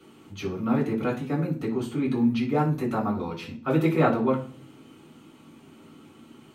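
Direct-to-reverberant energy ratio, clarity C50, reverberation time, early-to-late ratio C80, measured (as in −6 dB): −4.0 dB, 11.0 dB, 0.45 s, 16.0 dB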